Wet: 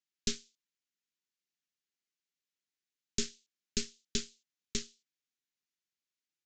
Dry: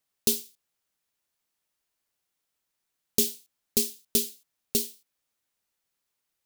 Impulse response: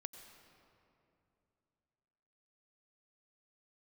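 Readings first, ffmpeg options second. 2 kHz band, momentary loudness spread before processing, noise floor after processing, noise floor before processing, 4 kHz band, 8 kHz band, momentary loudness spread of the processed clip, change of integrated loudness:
-0.5 dB, 9 LU, under -85 dBFS, -82 dBFS, -5.5 dB, -9.5 dB, 7 LU, -11.0 dB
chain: -filter_complex "[0:a]highpass=160,aeval=exprs='0.473*(cos(1*acos(clip(val(0)/0.473,-1,1)))-cos(1*PI/2))+0.0841*(cos(3*acos(clip(val(0)/0.473,-1,1)))-cos(3*PI/2))+0.15*(cos(5*acos(clip(val(0)/0.473,-1,1)))-cos(5*PI/2))+0.106*(cos(7*acos(clip(val(0)/0.473,-1,1)))-cos(7*PI/2))+0.0596*(cos(8*acos(clip(val(0)/0.473,-1,1)))-cos(8*PI/2))':c=same,asuperstop=centerf=780:order=4:qfactor=0.63,asplit=2[s0][s1];[s1]acompressor=threshold=0.0447:ratio=6,volume=1[s2];[s0][s2]amix=inputs=2:normalize=0,aresample=16000,aresample=44100,volume=0.376"

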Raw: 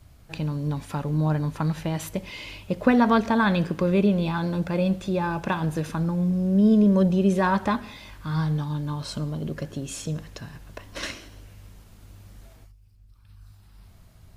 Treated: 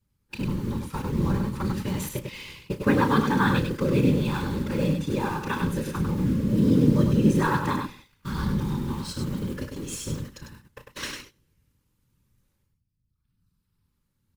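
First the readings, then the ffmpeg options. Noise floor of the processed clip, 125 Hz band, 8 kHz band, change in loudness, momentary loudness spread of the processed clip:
-75 dBFS, 0.0 dB, +2.0 dB, -1.0 dB, 15 LU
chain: -filter_complex "[0:a]agate=range=0.141:threshold=0.0112:ratio=16:detection=peak,highshelf=f=9800:g=7.5,asplit=2[s0][s1];[s1]acrusher=bits=6:dc=4:mix=0:aa=0.000001,volume=0.531[s2];[s0][s2]amix=inputs=2:normalize=0,afftfilt=real='hypot(re,im)*cos(2*PI*random(0))':imag='hypot(re,im)*sin(2*PI*random(1))':win_size=512:overlap=0.75,asuperstop=centerf=680:order=4:qfactor=2.9,aecho=1:1:32.07|99.13:0.316|0.562"

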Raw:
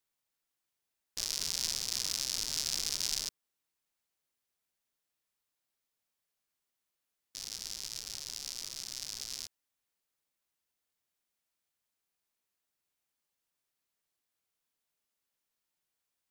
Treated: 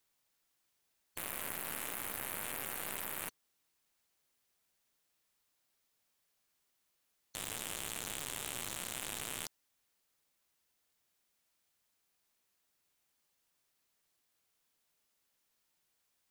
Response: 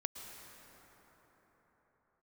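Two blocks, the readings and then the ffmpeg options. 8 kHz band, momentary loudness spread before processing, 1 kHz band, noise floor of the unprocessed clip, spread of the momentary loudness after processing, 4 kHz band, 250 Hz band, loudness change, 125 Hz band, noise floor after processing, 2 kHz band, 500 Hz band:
-6.0 dB, 10 LU, +9.0 dB, under -85 dBFS, 5 LU, -11.0 dB, +5.5 dB, -5.0 dB, +2.0 dB, -80 dBFS, +5.0 dB, +8.0 dB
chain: -af "afftfilt=real='re*lt(hypot(re,im),0.00794)':imag='im*lt(hypot(re,im),0.00794)':win_size=1024:overlap=0.75,aeval=exprs='0.0501*(cos(1*acos(clip(val(0)/0.0501,-1,1)))-cos(1*PI/2))+0.00891*(cos(6*acos(clip(val(0)/0.0501,-1,1)))-cos(6*PI/2))':c=same,volume=2.11"

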